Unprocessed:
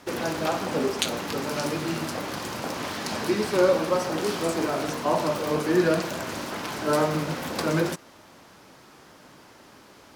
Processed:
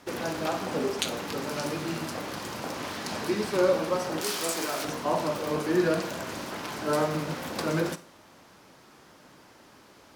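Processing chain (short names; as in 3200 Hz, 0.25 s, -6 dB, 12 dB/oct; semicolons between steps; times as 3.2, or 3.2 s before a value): 4.21–4.85 tilt +3 dB/oct; Schroeder reverb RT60 0.4 s, combs from 32 ms, DRR 14 dB; gain -3.5 dB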